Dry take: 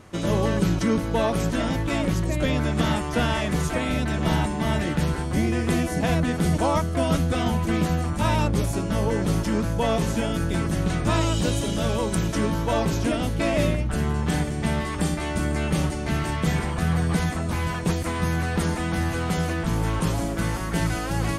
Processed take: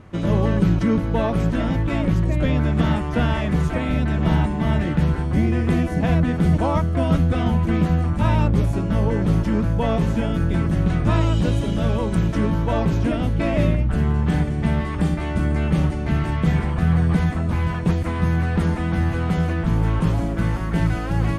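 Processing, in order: tone controls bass +6 dB, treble -12 dB

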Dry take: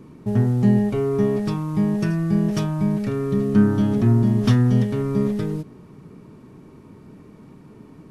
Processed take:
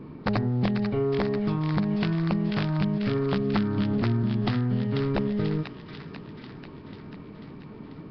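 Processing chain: high shelf 3400 Hz -2 dB; notches 60/120/180/240/300/360/420/480/540 Hz; compressor 10:1, threshold -25 dBFS, peak gain reduction 14 dB; wrapped overs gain 19.5 dB; thin delay 0.491 s, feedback 66%, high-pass 1500 Hz, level -4 dB; on a send at -20 dB: reverb RT60 0.50 s, pre-delay 7 ms; on the sum: gain +3 dB; Nellymoser 22 kbps 11025 Hz

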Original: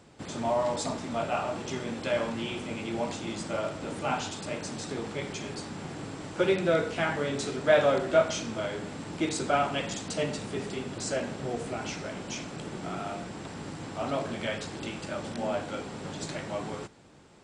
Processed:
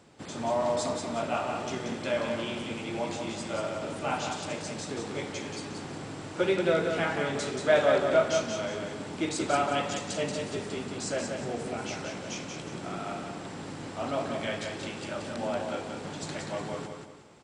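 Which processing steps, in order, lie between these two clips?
low shelf 87 Hz -7 dB; on a send: feedback echo 0.181 s, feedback 36%, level -5 dB; on the sum: gain -1 dB

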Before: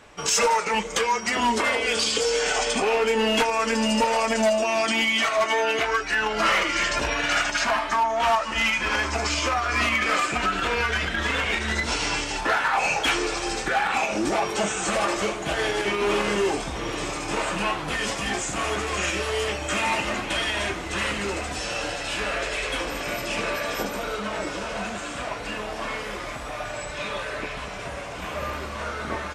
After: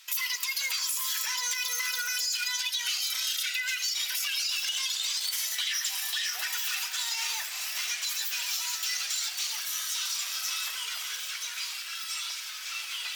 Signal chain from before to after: HPF 1200 Hz 12 dB/oct; compressor, threshold -27 dBFS, peak gain reduction 8 dB; wide varispeed 2.23×; on a send: reverb RT60 0.40 s, pre-delay 35 ms, DRR 14 dB

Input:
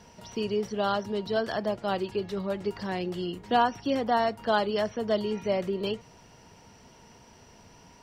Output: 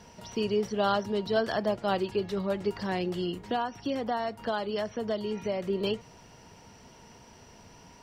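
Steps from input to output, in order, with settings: 3.41–5.7 compressor 3:1, threshold -30 dBFS, peak gain reduction 9.5 dB; gain +1 dB

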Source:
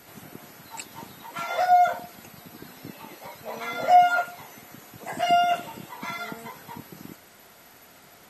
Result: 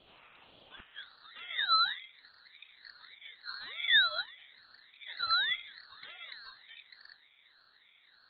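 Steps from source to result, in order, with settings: band-pass sweep 1600 Hz -> 490 Hz, 0.72–1.29; inverted band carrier 3400 Hz; ring modulator with a swept carrier 990 Hz, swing 40%, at 1.7 Hz

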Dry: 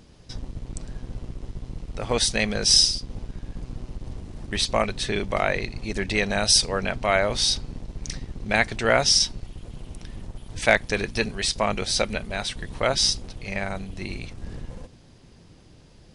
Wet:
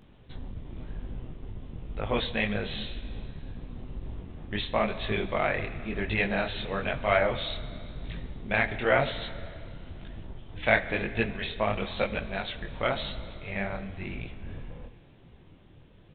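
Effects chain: downsampling 8000 Hz; Schroeder reverb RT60 2.5 s, combs from 29 ms, DRR 12.5 dB; detuned doubles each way 34 cents

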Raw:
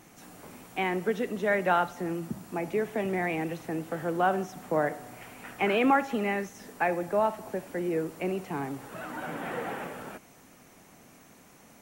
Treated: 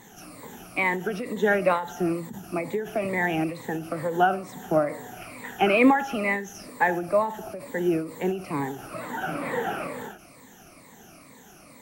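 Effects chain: moving spectral ripple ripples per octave 1, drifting -2.2 Hz, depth 14 dB; ending taper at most 110 dB/s; gain +3 dB

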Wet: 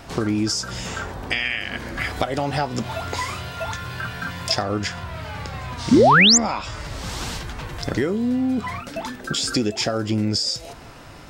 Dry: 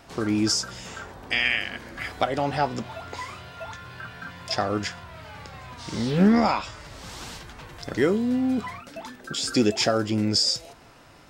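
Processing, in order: compressor 5:1, threshold -29 dBFS, peak gain reduction 13.5 dB; 2.16–4.63 high shelf 5200 Hz +7 dB; 5.91–6.38 painted sound rise 210–7800 Hz -21 dBFS; low shelf 140 Hz +6 dB; gain +8 dB

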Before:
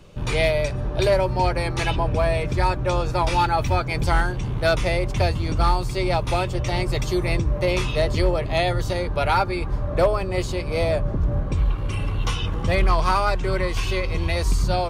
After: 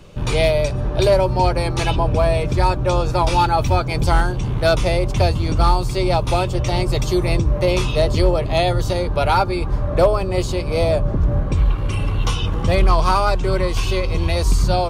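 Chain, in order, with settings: dynamic EQ 1900 Hz, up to -7 dB, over -42 dBFS, Q 1.9; gain +4.5 dB

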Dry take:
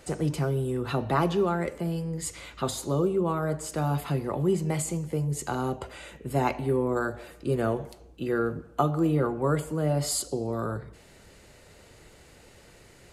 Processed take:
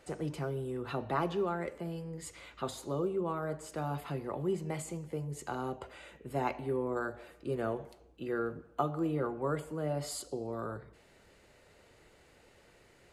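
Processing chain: tone controls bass -5 dB, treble -6 dB; gain -6.5 dB

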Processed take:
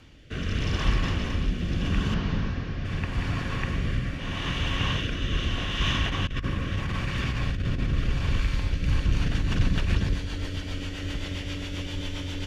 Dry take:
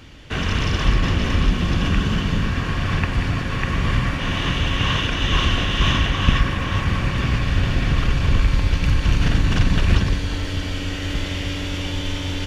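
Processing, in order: 2.14–2.85 delta modulation 32 kbps, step -38.5 dBFS; 6.05–7.93 negative-ratio compressor -19 dBFS, ratio -0.5; rotary speaker horn 0.8 Hz, later 7.5 Hz, at 8.55; gain -5.5 dB

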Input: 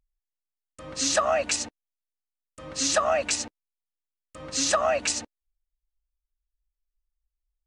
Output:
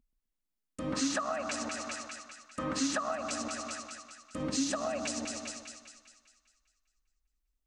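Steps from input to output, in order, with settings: 0.93–3.16 bell 1300 Hz +10.5 dB 1.5 oct; split-band echo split 1300 Hz, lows 0.128 s, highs 0.2 s, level -10 dB; compressor 6:1, threshold -34 dBFS, peak gain reduction 20.5 dB; bell 240 Hz +15 dB 1.1 oct

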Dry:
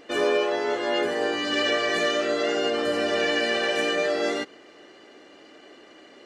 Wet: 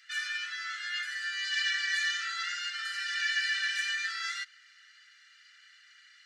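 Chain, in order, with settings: rippled Chebyshev high-pass 1300 Hz, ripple 6 dB

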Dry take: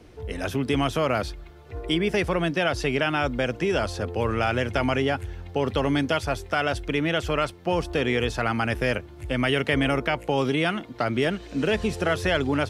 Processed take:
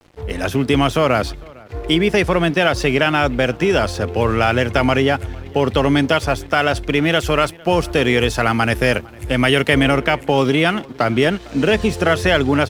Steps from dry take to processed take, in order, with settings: 7.03–9.83 high shelf 8600 Hz +9.5 dB; crossover distortion -47 dBFS; outdoor echo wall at 78 m, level -24 dB; gain +8.5 dB

